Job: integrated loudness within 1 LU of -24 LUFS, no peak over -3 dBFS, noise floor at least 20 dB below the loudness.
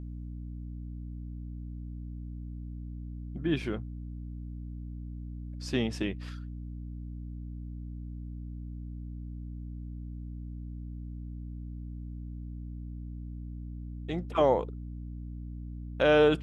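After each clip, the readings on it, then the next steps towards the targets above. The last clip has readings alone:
hum 60 Hz; harmonics up to 300 Hz; hum level -37 dBFS; loudness -35.5 LUFS; peak -12.0 dBFS; loudness target -24.0 LUFS
-> notches 60/120/180/240/300 Hz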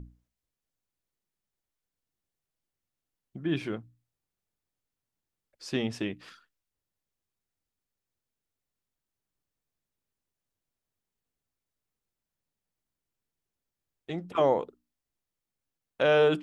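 hum none; loudness -29.0 LUFS; peak -12.5 dBFS; loudness target -24.0 LUFS
-> gain +5 dB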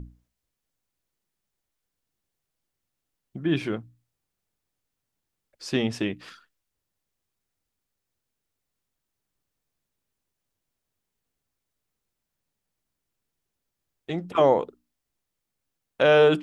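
loudness -24.0 LUFS; peak -7.5 dBFS; noise floor -84 dBFS

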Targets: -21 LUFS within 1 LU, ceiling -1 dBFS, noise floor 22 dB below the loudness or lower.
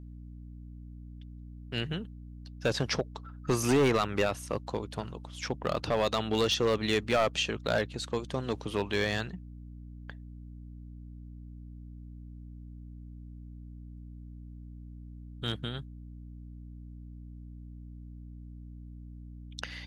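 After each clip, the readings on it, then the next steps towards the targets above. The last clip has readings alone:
clipped 0.6%; flat tops at -20.0 dBFS; hum 60 Hz; harmonics up to 300 Hz; hum level -43 dBFS; loudness -31.0 LUFS; peak -20.0 dBFS; loudness target -21.0 LUFS
-> clip repair -20 dBFS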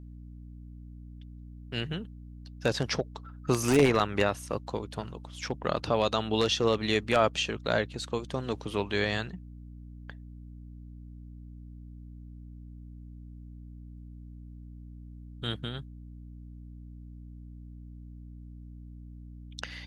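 clipped 0.0%; hum 60 Hz; harmonics up to 180 Hz; hum level -43 dBFS
-> de-hum 60 Hz, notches 3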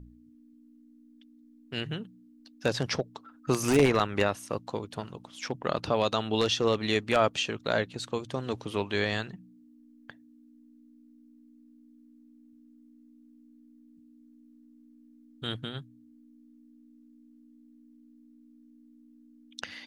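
hum none; loudness -29.5 LUFS; peak -10.5 dBFS; loudness target -21.0 LUFS
-> gain +8.5 dB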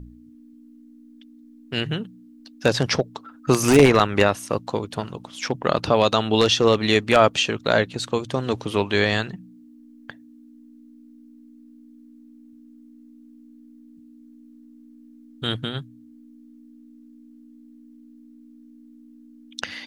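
loudness -21.0 LUFS; peak -2.0 dBFS; noise floor -49 dBFS

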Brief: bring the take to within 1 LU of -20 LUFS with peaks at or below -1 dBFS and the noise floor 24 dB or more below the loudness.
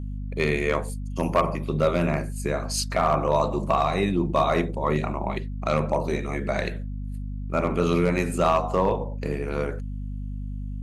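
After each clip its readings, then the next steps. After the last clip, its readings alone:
clipped 0.2%; flat tops at -12.5 dBFS; hum 50 Hz; harmonics up to 250 Hz; hum level -29 dBFS; loudness -25.5 LUFS; peak -12.5 dBFS; loudness target -20.0 LUFS
-> clip repair -12.5 dBFS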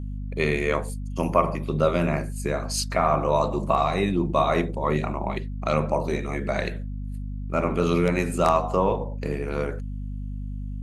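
clipped 0.0%; hum 50 Hz; harmonics up to 250 Hz; hum level -29 dBFS
-> de-hum 50 Hz, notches 5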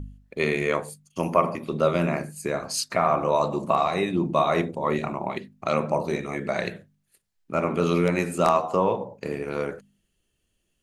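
hum none; loudness -25.5 LUFS; peak -4.0 dBFS; loudness target -20.0 LUFS
-> gain +5.5 dB; limiter -1 dBFS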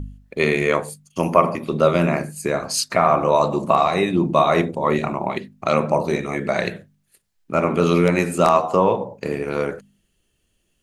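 loudness -20.0 LUFS; peak -1.0 dBFS; noise floor -69 dBFS

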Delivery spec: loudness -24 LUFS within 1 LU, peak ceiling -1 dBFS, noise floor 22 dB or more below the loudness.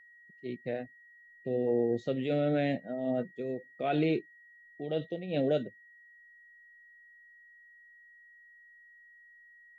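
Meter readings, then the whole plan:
steady tone 1900 Hz; tone level -55 dBFS; loudness -32.5 LUFS; peak -18.0 dBFS; loudness target -24.0 LUFS
-> notch 1900 Hz, Q 30; gain +8.5 dB

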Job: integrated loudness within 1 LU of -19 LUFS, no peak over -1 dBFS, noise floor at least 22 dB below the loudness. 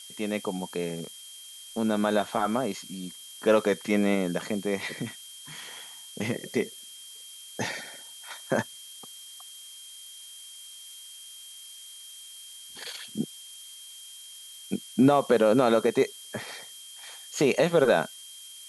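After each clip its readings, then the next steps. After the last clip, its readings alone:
steady tone 3200 Hz; tone level -46 dBFS; noise floor -46 dBFS; noise floor target -50 dBFS; loudness -27.5 LUFS; peak -9.5 dBFS; loudness target -19.0 LUFS
-> notch 3200 Hz, Q 30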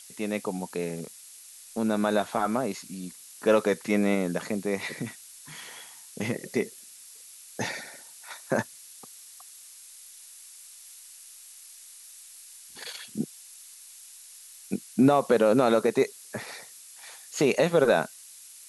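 steady tone none; noise floor -49 dBFS; noise floor target -50 dBFS
-> noise print and reduce 6 dB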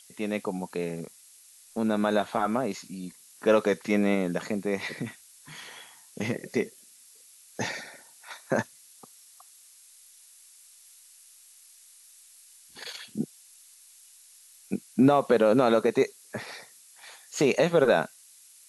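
noise floor -55 dBFS; loudness -27.0 LUFS; peak -9.5 dBFS; loudness target -19.0 LUFS
-> gain +8 dB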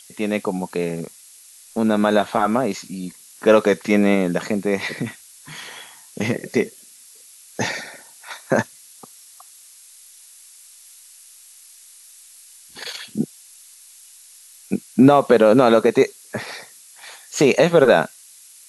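loudness -19.0 LUFS; peak -1.5 dBFS; noise floor -47 dBFS

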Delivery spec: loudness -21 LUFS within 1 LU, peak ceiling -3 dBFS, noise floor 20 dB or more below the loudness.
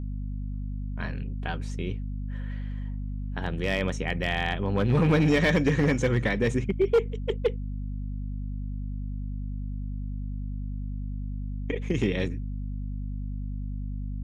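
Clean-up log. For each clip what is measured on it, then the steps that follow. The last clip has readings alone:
clipped 0.5%; flat tops at -15.5 dBFS; hum 50 Hz; harmonics up to 250 Hz; hum level -30 dBFS; loudness -29.5 LUFS; peak -15.5 dBFS; loudness target -21.0 LUFS
-> clip repair -15.5 dBFS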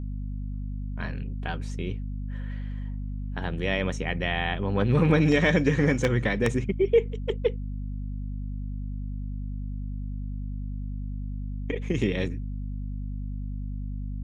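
clipped 0.0%; hum 50 Hz; harmonics up to 250 Hz; hum level -30 dBFS
-> de-hum 50 Hz, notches 5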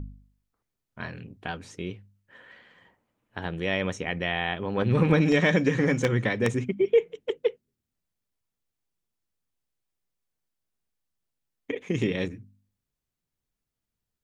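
hum none; loudness -26.5 LUFS; peak -6.5 dBFS; loudness target -21.0 LUFS
-> gain +5.5 dB; limiter -3 dBFS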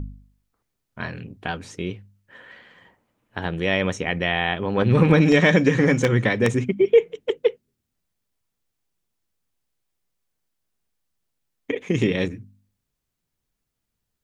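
loudness -21.0 LUFS; peak -3.0 dBFS; noise floor -80 dBFS

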